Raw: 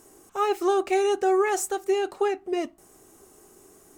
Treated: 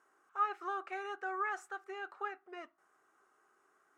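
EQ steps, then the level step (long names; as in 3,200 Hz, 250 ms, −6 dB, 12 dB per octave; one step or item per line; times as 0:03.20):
resonant band-pass 1,400 Hz, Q 3.7
−1.5 dB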